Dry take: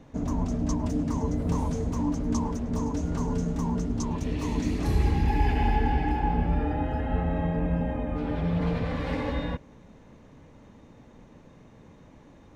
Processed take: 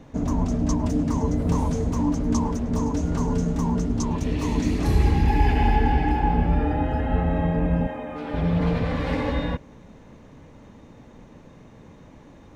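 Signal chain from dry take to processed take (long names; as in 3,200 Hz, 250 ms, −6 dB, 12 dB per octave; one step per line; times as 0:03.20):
0:07.87–0:08.34: high-pass filter 590 Hz 6 dB per octave
level +4.5 dB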